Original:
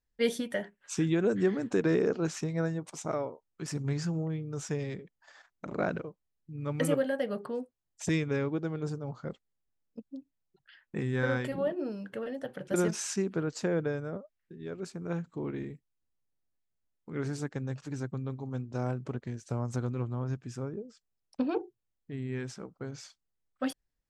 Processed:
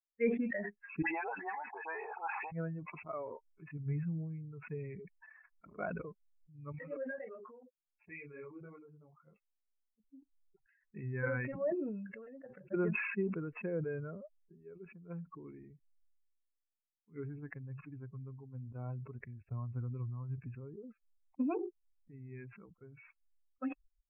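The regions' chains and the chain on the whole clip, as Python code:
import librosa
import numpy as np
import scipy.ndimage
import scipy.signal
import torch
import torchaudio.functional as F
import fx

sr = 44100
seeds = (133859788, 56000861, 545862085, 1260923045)

y = fx.chain(x, sr, fx.highpass_res(hz=830.0, q=10.0),
    fx.dispersion(late='highs', ms=79.0, hz=1900.0), at=(1.02, 2.52))
y = fx.chain(y, sr, fx.low_shelf(hz=220.0, db=-9.5),
    fx.detune_double(cents=36), at=(6.72, 10.0))
y = fx.bin_expand(y, sr, power=2.0)
y = scipy.signal.sosfilt(scipy.signal.cheby1(10, 1.0, 2600.0, 'lowpass', fs=sr, output='sos'), y)
y = fx.sustainer(y, sr, db_per_s=34.0)
y = F.gain(torch.from_numpy(y), -2.5).numpy()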